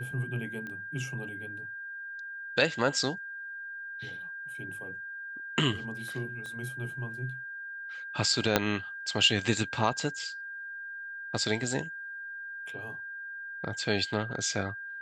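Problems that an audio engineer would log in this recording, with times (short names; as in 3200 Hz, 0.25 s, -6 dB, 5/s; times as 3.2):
tone 1600 Hz -38 dBFS
0.67 pop -28 dBFS
6.46 pop -30 dBFS
8.56 pop -6 dBFS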